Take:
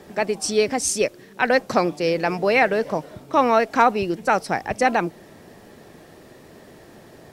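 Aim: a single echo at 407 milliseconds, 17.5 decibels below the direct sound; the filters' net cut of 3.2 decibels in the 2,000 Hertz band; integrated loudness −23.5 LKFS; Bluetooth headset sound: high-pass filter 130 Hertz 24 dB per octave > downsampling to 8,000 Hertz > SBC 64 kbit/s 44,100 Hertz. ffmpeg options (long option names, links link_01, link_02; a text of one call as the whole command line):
ffmpeg -i in.wav -af "highpass=frequency=130:width=0.5412,highpass=frequency=130:width=1.3066,equalizer=frequency=2000:width_type=o:gain=-4,aecho=1:1:407:0.133,aresample=8000,aresample=44100,volume=-1.5dB" -ar 44100 -c:a sbc -b:a 64k out.sbc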